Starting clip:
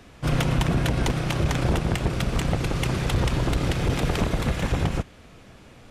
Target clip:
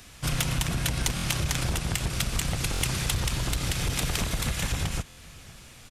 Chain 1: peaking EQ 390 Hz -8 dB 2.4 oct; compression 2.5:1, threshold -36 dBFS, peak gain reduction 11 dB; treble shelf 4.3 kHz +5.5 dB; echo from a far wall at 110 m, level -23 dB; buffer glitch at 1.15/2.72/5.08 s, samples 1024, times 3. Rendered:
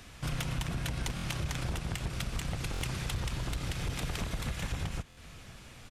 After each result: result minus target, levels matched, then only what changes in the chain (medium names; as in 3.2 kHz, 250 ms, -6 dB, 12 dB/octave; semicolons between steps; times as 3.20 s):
compression: peak gain reduction +6 dB; 8 kHz band -5.0 dB
change: compression 2.5:1, threshold -26 dBFS, peak gain reduction 5 dB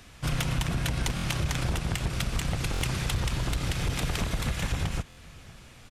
8 kHz band -5.0 dB
change: treble shelf 4.3 kHz +14.5 dB